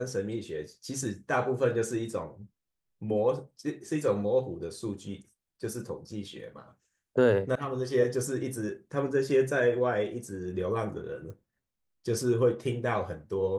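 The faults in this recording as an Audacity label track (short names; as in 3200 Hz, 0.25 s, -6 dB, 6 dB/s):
11.300000	11.300000	pop -34 dBFS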